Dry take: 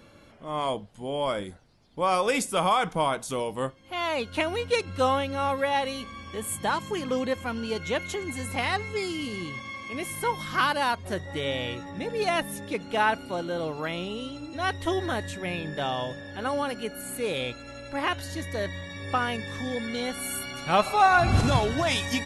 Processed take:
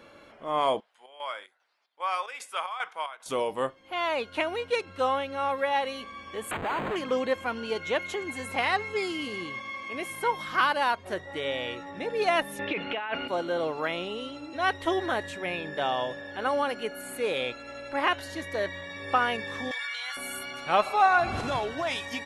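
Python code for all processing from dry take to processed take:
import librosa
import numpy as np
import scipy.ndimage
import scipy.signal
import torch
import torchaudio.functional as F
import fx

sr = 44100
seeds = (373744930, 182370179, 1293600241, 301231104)

y = fx.chain(x, sr, fx.highpass(hz=1400.0, slope=12),
    fx.high_shelf(hz=2700.0, db=-10.0),
    fx.chopper(hz=2.5, depth_pct=65, duty_pct=65), at=(0.8, 3.26))
y = fx.chain(y, sr, fx.schmitt(flips_db=-39.0),
    fx.resample_linear(factor=8), at=(6.51, 6.96))
y = fx.chain(y, sr, fx.lowpass_res(hz=2700.0, q=2.5),
    fx.over_compress(threshold_db=-31.0, ratio=-1.0), at=(12.59, 13.28))
y = fx.chain(y, sr, fx.highpass(hz=1100.0, slope=24),
    fx.env_flatten(amount_pct=100), at=(19.71, 20.17))
y = fx.bass_treble(y, sr, bass_db=-13, treble_db=-8)
y = fx.rider(y, sr, range_db=4, speed_s=2.0)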